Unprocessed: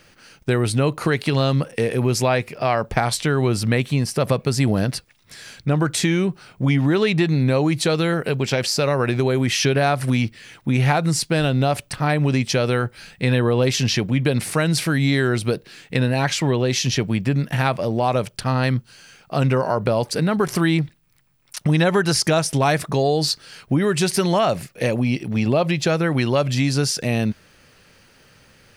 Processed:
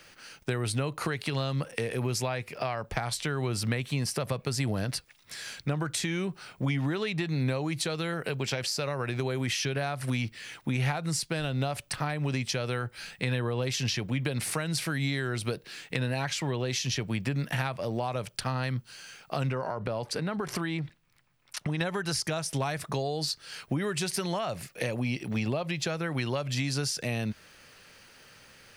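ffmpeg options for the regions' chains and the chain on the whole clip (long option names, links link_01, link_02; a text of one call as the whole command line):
ffmpeg -i in.wav -filter_complex "[0:a]asettb=1/sr,asplit=3[link_01][link_02][link_03];[link_01]atrim=end=19.494[link_04];[link_02]atrim=start=19.49:end=21.81,asetpts=PTS-STARTPTS,afade=type=in:duration=0.004:curve=qsin,afade=type=out:start_time=2.316:duration=0.004:curve=qsin,aemphasis=mode=reproduction:type=cd,acompressor=threshold=-19dB:ratio=3:attack=3.2:release=140:knee=1:detection=peak[link_05];[link_03]atrim=start=21.806[link_06];[link_04][link_05]acrossfade=duration=0.004:curve1=hsin:curve2=qsin[link_07];[link_07][link_06]acrossfade=duration=0.004:curve1=qsin:curve2=hsin,lowshelf=frequency=460:gain=-8,acrossover=split=130[link_08][link_09];[link_09]acompressor=threshold=-29dB:ratio=6[link_10];[link_08][link_10]amix=inputs=2:normalize=0" out.wav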